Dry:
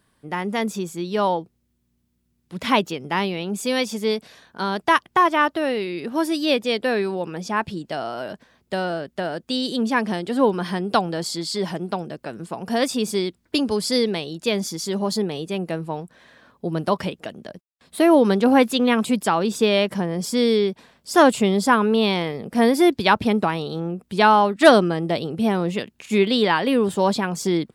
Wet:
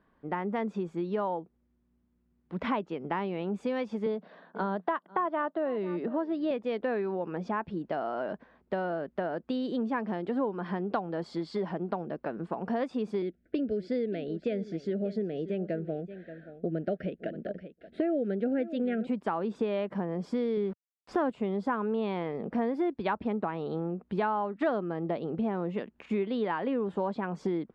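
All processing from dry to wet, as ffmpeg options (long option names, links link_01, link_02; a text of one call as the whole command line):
ffmpeg -i in.wav -filter_complex "[0:a]asettb=1/sr,asplit=3[link_01][link_02][link_03];[link_01]atrim=end=4.064[link_04];[link_02]atrim=start=4.06:end=6.51,asetpts=PTS-STARTPTS,afade=type=in:duration=0.004:curve=qsin,afade=type=out:start_time=2.446:duration=0.004:curve=qsin,highpass=frequency=180:width=0.5412,highpass=frequency=180:width=1.3066,equalizer=frequency=180:width_type=q:width=4:gain=9,equalizer=frequency=620:width_type=q:width=4:gain=5,equalizer=frequency=2400:width_type=q:width=4:gain=-7,lowpass=frequency=4600:width=0.5412,lowpass=frequency=4600:width=1.3066,aecho=1:1:494:0.075,atrim=end_sample=108045[link_05];[link_03]atrim=start=6.506[link_06];[link_04][link_05]acrossfade=duration=0.004:curve1=hsin:curve2=qsin[link_07];[link_07][link_06]acrossfade=duration=0.004:curve1=qsin:curve2=hsin,asettb=1/sr,asplit=3[link_08][link_09][link_10];[link_08]atrim=end=13.224[link_11];[link_09]atrim=start=13.22:end=19.07,asetpts=PTS-STARTPTS,afade=type=in:duration=0.004:curve=qsin,afade=type=out:start_time=5.846:duration=0.004:curve=qsin,asuperstop=centerf=1000:order=8:qfactor=1.4,aemphasis=mode=reproduction:type=50fm,aecho=1:1:579:0.141,atrim=end_sample=257985[link_12];[link_10]atrim=start=19.066[link_13];[link_11][link_12]acrossfade=duration=0.004:curve1=hsin:curve2=qsin[link_14];[link_14][link_13]acrossfade=duration=0.004:curve1=qsin:curve2=hsin,asettb=1/sr,asplit=3[link_15][link_16][link_17];[link_15]atrim=end=20.574[link_18];[link_16]atrim=start=20.57:end=21.3,asetpts=PTS-STARTPTS,afade=type=in:duration=0.004:curve=qsin,afade=type=out:start_time=0.726:duration=0.004:curve=qsin,bass=frequency=250:gain=7,treble=frequency=4000:gain=-1,aeval=exprs='val(0)*gte(abs(val(0)),0.0188)':channel_layout=same[link_19];[link_17]atrim=start=21.296[link_20];[link_18][link_19]acrossfade=duration=0.004:curve1=hsin:curve2=qsin[link_21];[link_21][link_20]acrossfade=duration=0.004:curve1=qsin:curve2=hsin,lowpass=1500,equalizer=frequency=110:width_type=o:width=0.67:gain=-12,acompressor=threshold=-29dB:ratio=4" out.wav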